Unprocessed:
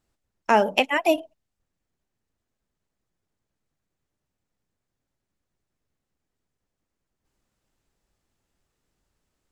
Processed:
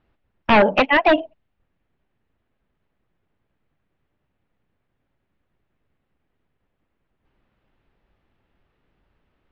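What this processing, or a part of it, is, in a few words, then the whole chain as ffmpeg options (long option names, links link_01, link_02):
synthesiser wavefolder: -af "aeval=exprs='0.158*(abs(mod(val(0)/0.158+3,4)-2)-1)':channel_layout=same,lowpass=frequency=3100:width=0.5412,lowpass=frequency=3100:width=1.3066,volume=9dB"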